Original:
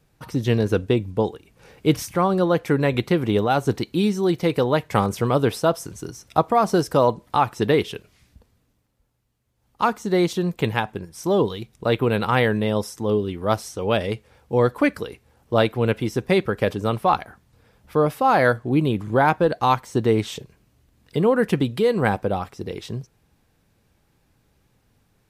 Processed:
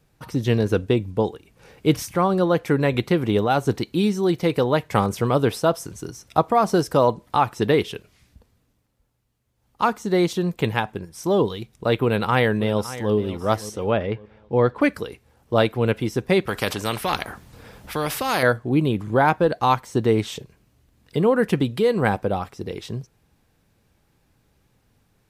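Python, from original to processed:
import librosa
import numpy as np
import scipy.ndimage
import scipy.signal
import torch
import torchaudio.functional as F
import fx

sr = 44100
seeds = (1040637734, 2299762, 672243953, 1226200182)

y = fx.echo_throw(x, sr, start_s=12.04, length_s=1.09, ms=560, feedback_pct=35, wet_db=-15.0)
y = fx.lowpass(y, sr, hz=fx.line((13.9, 2000.0), (14.8, 4000.0)), slope=12, at=(13.9, 14.8), fade=0.02)
y = fx.spectral_comp(y, sr, ratio=2.0, at=(16.47, 18.43))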